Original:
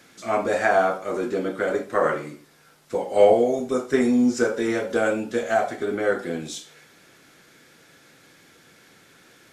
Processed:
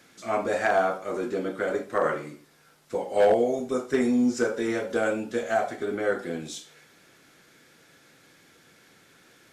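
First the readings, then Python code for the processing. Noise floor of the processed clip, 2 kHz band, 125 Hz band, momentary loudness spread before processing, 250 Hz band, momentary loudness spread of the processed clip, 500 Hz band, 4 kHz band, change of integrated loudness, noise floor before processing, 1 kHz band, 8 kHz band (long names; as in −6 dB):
−58 dBFS, −3.5 dB, −3.5 dB, 12 LU, −3.5 dB, 12 LU, −4.0 dB, −3.5 dB, −3.5 dB, −55 dBFS, −3.5 dB, −3.5 dB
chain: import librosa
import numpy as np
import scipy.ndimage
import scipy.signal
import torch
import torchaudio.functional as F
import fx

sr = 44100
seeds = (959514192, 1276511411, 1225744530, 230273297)

y = np.clip(x, -10.0 ** (-10.0 / 20.0), 10.0 ** (-10.0 / 20.0))
y = F.gain(torch.from_numpy(y), -3.5).numpy()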